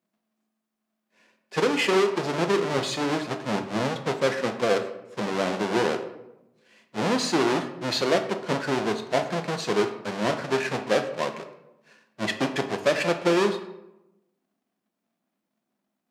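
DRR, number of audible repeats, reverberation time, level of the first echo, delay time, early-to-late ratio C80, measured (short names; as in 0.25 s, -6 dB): 5.5 dB, none, 0.90 s, none, none, 12.5 dB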